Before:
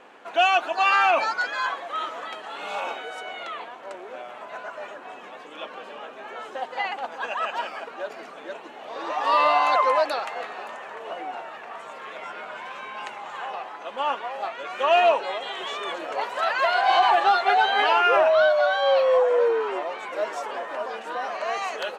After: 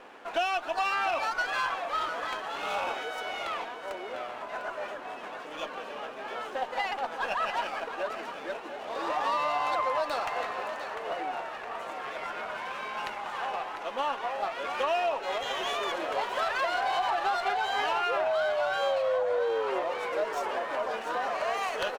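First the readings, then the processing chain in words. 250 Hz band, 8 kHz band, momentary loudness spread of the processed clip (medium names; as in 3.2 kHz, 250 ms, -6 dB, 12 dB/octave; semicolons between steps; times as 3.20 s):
-2.5 dB, no reading, 10 LU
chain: compression, threshold -26 dBFS, peak gain reduction 11 dB; on a send: delay 700 ms -10 dB; on the sum: sliding maximum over 3 samples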